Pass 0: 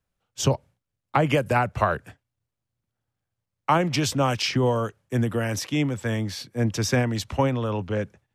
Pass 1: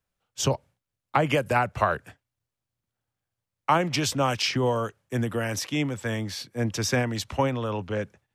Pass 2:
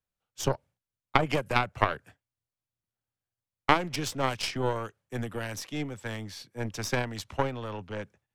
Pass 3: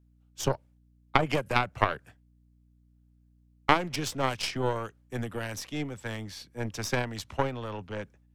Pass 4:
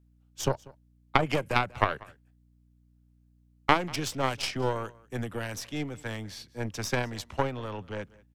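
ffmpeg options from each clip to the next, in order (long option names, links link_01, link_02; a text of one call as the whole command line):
ffmpeg -i in.wav -af "lowshelf=frequency=400:gain=-4.5" out.wav
ffmpeg -i in.wav -af "aeval=exprs='0.422*(cos(1*acos(clip(val(0)/0.422,-1,1)))-cos(1*PI/2))+0.15*(cos(2*acos(clip(val(0)/0.422,-1,1)))-cos(2*PI/2))+0.0944*(cos(3*acos(clip(val(0)/0.422,-1,1)))-cos(3*PI/2))+0.00841*(cos(5*acos(clip(val(0)/0.422,-1,1)))-cos(5*PI/2))+0.00531*(cos(7*acos(clip(val(0)/0.422,-1,1)))-cos(7*PI/2))':channel_layout=same,volume=1dB" out.wav
ffmpeg -i in.wav -af "aeval=exprs='val(0)+0.000891*(sin(2*PI*60*n/s)+sin(2*PI*2*60*n/s)/2+sin(2*PI*3*60*n/s)/3+sin(2*PI*4*60*n/s)/4+sin(2*PI*5*60*n/s)/5)':channel_layout=same" out.wav
ffmpeg -i in.wav -af "aecho=1:1:191:0.0708" out.wav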